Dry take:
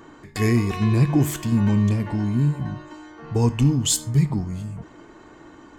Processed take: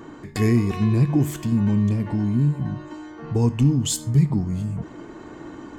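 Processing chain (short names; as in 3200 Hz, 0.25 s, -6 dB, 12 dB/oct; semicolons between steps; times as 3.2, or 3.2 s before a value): in parallel at +1.5 dB: compressor, threshold -30 dBFS, peak gain reduction 16 dB; on the sum: bell 200 Hz +6 dB 3 oct; vocal rider within 4 dB 2 s; gain -7.5 dB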